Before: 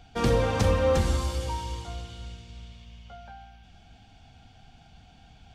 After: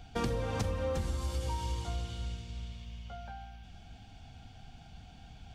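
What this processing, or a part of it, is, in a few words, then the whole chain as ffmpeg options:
ASMR close-microphone chain: -af "lowshelf=frequency=240:gain=4,acompressor=threshold=-29dB:ratio=8,highshelf=frequency=7700:gain=4,volume=-1dB"

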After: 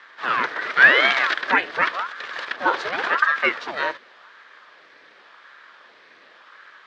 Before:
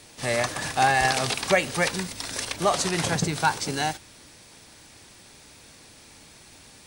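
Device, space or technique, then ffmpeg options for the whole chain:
voice changer toy: -filter_complex "[0:a]aeval=exprs='val(0)*sin(2*PI*830*n/s+830*0.8/0.9*sin(2*PI*0.9*n/s))':channel_layout=same,highpass=420,equalizer=frequency=770:width_type=q:width=4:gain=-5,equalizer=frequency=1200:width_type=q:width=4:gain=4,equalizer=frequency=1700:width_type=q:width=4:gain=9,equalizer=frequency=2800:width_type=q:width=4:gain=-4,lowpass=frequency=3500:width=0.5412,lowpass=frequency=3500:width=1.3066,asettb=1/sr,asplit=3[link_01][link_02][link_03];[link_01]atrim=end=0.694[link_04];[link_02]atrim=start=0.69:end=1.34,asetpts=PTS-STARTPTS,afade=type=in:duration=0.004:curve=qsin,afade=type=out:start_time=0.646:duration=0.004:curve=qsin,equalizer=frequency=5200:width=0.32:gain=4.5[link_05];[link_03]atrim=start=1.336[link_06];[link_04][link_05]acrossfade=duration=0.004:curve1=hsin:curve2=qsin[link_07];[link_07][link_06]acrossfade=duration=0.004:curve1=qsin:curve2=hsin,volume=5dB"

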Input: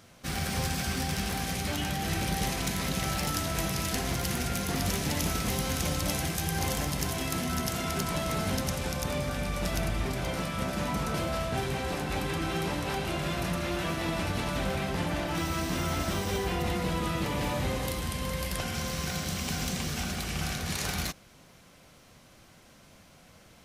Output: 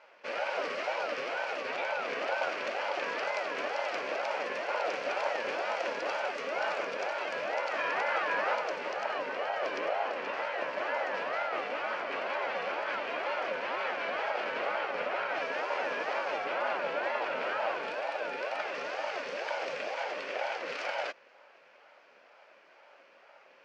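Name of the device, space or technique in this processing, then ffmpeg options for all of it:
voice changer toy: -filter_complex "[0:a]aeval=exprs='val(0)*sin(2*PI*540*n/s+540*0.4/2.1*sin(2*PI*2.1*n/s))':channel_layout=same,highpass=540,equalizer=frequency=570:width_type=q:width=4:gain=7,equalizer=frequency=1500:width_type=q:width=4:gain=6,equalizer=frequency=2400:width_type=q:width=4:gain=6,equalizer=frequency=3700:width_type=q:width=4:gain=-9,lowpass=frequency=4200:width=0.5412,lowpass=frequency=4200:width=1.3066,asettb=1/sr,asplit=3[link_01][link_02][link_03];[link_01]atrim=end=7.714[link_04];[link_02]atrim=start=7.71:end=8.54,asetpts=PTS-STARTPTS,afade=type=in:duration=0.004:curve=qsin,afade=type=out:start_time=0.826:duration=0.004:curve=qsin,equalizer=frequency=1400:width=0.9:gain=5[link_05];[link_03]atrim=start=8.536[link_06];[link_04][link_05]acrossfade=duration=0.004:curve1=hsin:curve2=qsin[link_07];[link_07][link_06]acrossfade=duration=0.004:curve1=qsin:curve2=hsin"

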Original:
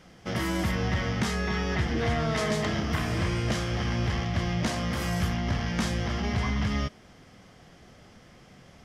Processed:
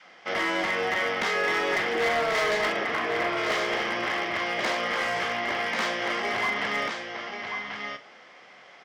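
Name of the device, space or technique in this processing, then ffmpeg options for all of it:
megaphone: -filter_complex "[0:a]asettb=1/sr,asplit=3[link_01][link_02][link_03];[link_01]atrim=end=2.724[link_04];[link_02]atrim=start=2.72:end=3.37,asetpts=PTS-STARTPTS,afade=type=in:duration=0.004:curve=qsin,afade=type=out:start_time=0.646:duration=0.004:curve=qsin,aemphasis=mode=reproduction:type=75kf[link_05];[link_03]atrim=start=3.366[link_06];[link_04][link_05]acrossfade=duration=0.004:curve1=hsin:curve2=qsin[link_07];[link_07][link_06]acrossfade=duration=0.004:curve1=qsin:curve2=hsin,aecho=1:1:1087:0.501,adynamicequalizer=threshold=0.00891:dfrequency=420:dqfactor=1.4:tfrequency=420:tqfactor=1.4:attack=5:release=100:ratio=0.375:range=3:mode=boostabove:tftype=bell,highpass=650,lowpass=3800,equalizer=frequency=2100:width_type=o:width=0.22:gain=5,asoftclip=type=hard:threshold=-27dB,asplit=2[link_08][link_09];[link_09]adelay=43,volume=-12dB[link_10];[link_08][link_10]amix=inputs=2:normalize=0,volume=6dB"

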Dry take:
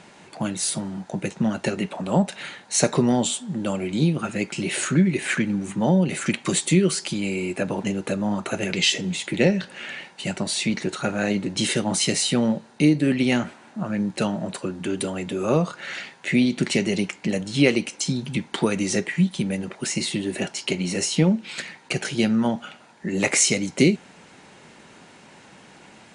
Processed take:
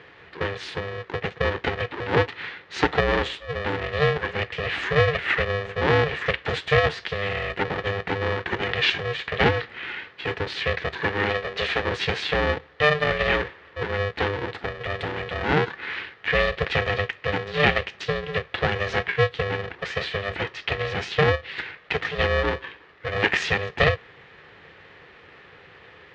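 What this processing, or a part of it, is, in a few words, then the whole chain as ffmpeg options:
ring modulator pedal into a guitar cabinet: -filter_complex "[0:a]aeval=exprs='val(0)*sgn(sin(2*PI*300*n/s))':channel_layout=same,highpass=83,equalizer=frequency=120:width_type=q:width=4:gain=-3,equalizer=frequency=240:width_type=q:width=4:gain=-5,equalizer=frequency=390:width_type=q:width=4:gain=7,equalizer=frequency=630:width_type=q:width=4:gain=-8,equalizer=frequency=1100:width_type=q:width=4:gain=-3,equalizer=frequency=1800:width_type=q:width=4:gain=7,lowpass=frequency=3600:width=0.5412,lowpass=frequency=3600:width=1.3066,asettb=1/sr,asplit=3[link_01][link_02][link_03];[link_01]atrim=end=11.304[link_04];[link_02]atrim=start=11.3:end=11.82,asetpts=PTS-STARTPTS,afade=type=in:duration=0.004:curve=qsin,afade=type=out:start_time=0.516:duration=0.004:curve=qsin,equalizer=frequency=120:width_type=o:width=1.1:gain=-9[link_05];[link_03]atrim=start=11.816[link_06];[link_04][link_05]acrossfade=duration=0.004:curve1=hsin:curve2=qsin[link_07];[link_07][link_06]acrossfade=duration=0.004:curve1=qsin:curve2=hsin"

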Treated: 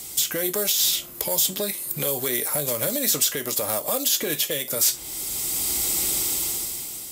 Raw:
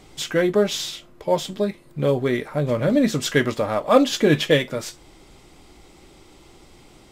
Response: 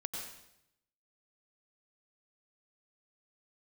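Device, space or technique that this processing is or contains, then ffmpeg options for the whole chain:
FM broadcast chain: -filter_complex "[0:a]highpass=43,dynaudnorm=framelen=150:gausssize=11:maxgain=14dB,acrossover=split=400|800|4200[link_01][link_02][link_03][link_04];[link_01]acompressor=threshold=-33dB:ratio=4[link_05];[link_02]acompressor=threshold=-24dB:ratio=4[link_06];[link_03]acompressor=threshold=-35dB:ratio=4[link_07];[link_04]acompressor=threshold=-44dB:ratio=4[link_08];[link_05][link_06][link_07][link_08]amix=inputs=4:normalize=0,aemphasis=mode=production:type=75fm,alimiter=limit=-18dB:level=0:latency=1:release=132,asoftclip=type=hard:threshold=-20.5dB,lowpass=frequency=15000:width=0.5412,lowpass=frequency=15000:width=1.3066,aemphasis=mode=production:type=75fm"

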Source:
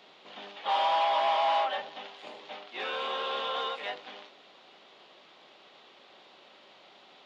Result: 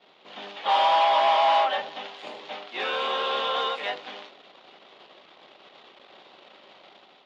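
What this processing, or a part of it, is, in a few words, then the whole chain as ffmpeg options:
voice memo with heavy noise removal: -af "anlmdn=0.000398,dynaudnorm=framelen=130:gausssize=5:maxgain=6dB"

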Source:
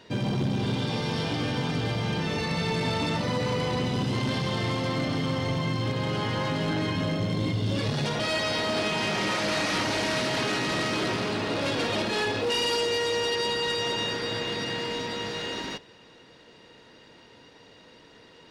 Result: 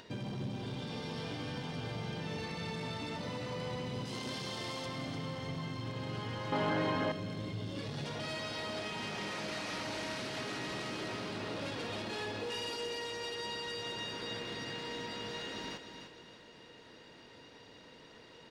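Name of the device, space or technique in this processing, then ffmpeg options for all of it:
upward and downward compression: -filter_complex "[0:a]asettb=1/sr,asplit=3[link_01][link_02][link_03];[link_01]atrim=end=4.054[link_04];[link_02]atrim=start=4.05:end=4.86,asetpts=PTS-STARTPTS,afade=type=in:duration=0.004:curve=qsin,afade=type=out:start_time=0.806:duration=0.004:curve=qsin,bass=frequency=250:gain=-8,treble=frequency=4000:gain=8[link_05];[link_03]atrim=start=4.856[link_06];[link_04][link_05]acrossfade=duration=0.004:curve1=hsin:curve2=qsin[link_07];[link_07][link_06]acrossfade=duration=0.004:curve1=qsin:curve2=hsin,acompressor=mode=upward:threshold=-42dB:ratio=2.5,acompressor=threshold=-31dB:ratio=3,aecho=1:1:301|602|903|1204:0.398|0.147|0.0545|0.0202,asettb=1/sr,asplit=3[link_08][link_09][link_10];[link_08]atrim=end=6.524[link_11];[link_09]atrim=start=6.52:end=7.12,asetpts=PTS-STARTPTS,afade=type=in:duration=0.004:curve=qsin,afade=type=out:start_time=0.596:duration=0.004:curve=qsin,equalizer=frequency=850:width=0.38:gain=12.5[link_12];[link_10]atrim=start=7.116[link_13];[link_11][link_12]acrossfade=duration=0.004:curve1=hsin:curve2=qsin[link_14];[link_14][link_13]acrossfade=duration=0.004:curve1=qsin:curve2=hsin,volume=-7.5dB"

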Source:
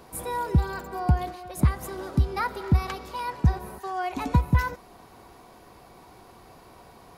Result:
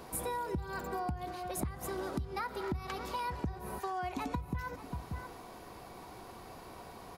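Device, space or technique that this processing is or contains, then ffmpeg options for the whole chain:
serial compression, leveller first: -filter_complex "[0:a]bandreject=frequency=50:width_type=h:width=6,bandreject=frequency=100:width_type=h:width=6,bandreject=frequency=150:width_type=h:width=6,asplit=2[link_01][link_02];[link_02]adelay=583.1,volume=-19dB,highshelf=frequency=4000:gain=-13.1[link_03];[link_01][link_03]amix=inputs=2:normalize=0,acompressor=threshold=-24dB:ratio=2.5,acompressor=threshold=-35dB:ratio=6,volume=1dB"

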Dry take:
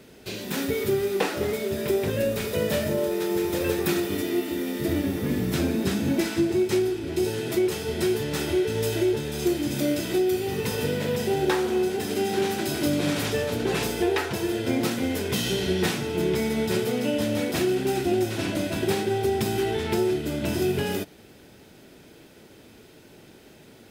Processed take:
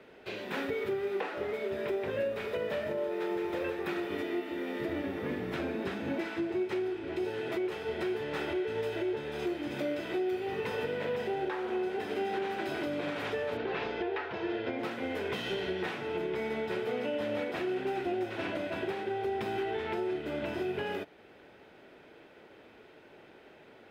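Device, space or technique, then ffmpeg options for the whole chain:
DJ mixer with the lows and highs turned down: -filter_complex "[0:a]acrossover=split=380 3000:gain=0.224 1 0.0708[link_01][link_02][link_03];[link_01][link_02][link_03]amix=inputs=3:normalize=0,alimiter=level_in=0.5dB:limit=-24dB:level=0:latency=1:release=399,volume=-0.5dB,asettb=1/sr,asplit=3[link_04][link_05][link_06];[link_04]atrim=end=13.574[link_07];[link_05]atrim=start=13.57:end=14.79,asetpts=PTS-STARTPTS,afade=type=in:duration=0.004:curve=qsin,afade=type=out:start_time=1.216:duration=0.004:curve=qsin,lowpass=frequency=5200:width=0.5412,lowpass=frequency=5200:width=1.3066[link_08];[link_06]atrim=start=14.786[link_09];[link_07][link_08]acrossfade=duration=0.004:curve1=hsin:curve2=qsin[link_10];[link_10][link_09]acrossfade=duration=0.004:curve1=qsin:curve2=hsin"

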